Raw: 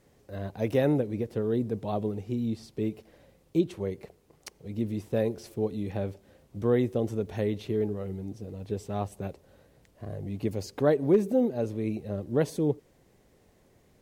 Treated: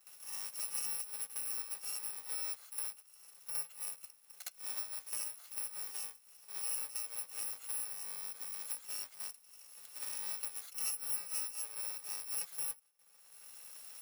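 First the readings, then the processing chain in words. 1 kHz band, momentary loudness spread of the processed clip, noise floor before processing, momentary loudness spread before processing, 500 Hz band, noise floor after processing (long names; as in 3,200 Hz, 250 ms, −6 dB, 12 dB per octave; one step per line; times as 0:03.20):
−14.5 dB, 13 LU, −64 dBFS, 14 LU, −35.0 dB, −64 dBFS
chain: samples in bit-reversed order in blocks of 128 samples
camcorder AGC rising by 8.1 dB per second
high-pass filter 820 Hz 12 dB per octave
noise gate with hold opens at −51 dBFS
flanger 0.21 Hz, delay 5.4 ms, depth 1.1 ms, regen −61%
echo ahead of the sound 62 ms −12 dB
multiband upward and downward compressor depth 70%
level −8 dB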